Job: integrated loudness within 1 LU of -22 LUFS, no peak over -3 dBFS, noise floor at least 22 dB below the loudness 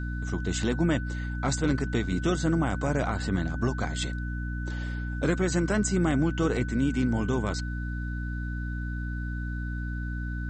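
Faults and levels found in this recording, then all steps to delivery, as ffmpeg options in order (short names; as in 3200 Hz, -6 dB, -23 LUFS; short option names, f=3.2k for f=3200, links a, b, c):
hum 60 Hz; harmonics up to 300 Hz; hum level -30 dBFS; steady tone 1500 Hz; tone level -40 dBFS; loudness -29.0 LUFS; peak -14.0 dBFS; loudness target -22.0 LUFS
-> -af "bandreject=f=60:t=h:w=6,bandreject=f=120:t=h:w=6,bandreject=f=180:t=h:w=6,bandreject=f=240:t=h:w=6,bandreject=f=300:t=h:w=6"
-af "bandreject=f=1.5k:w=30"
-af "volume=7dB"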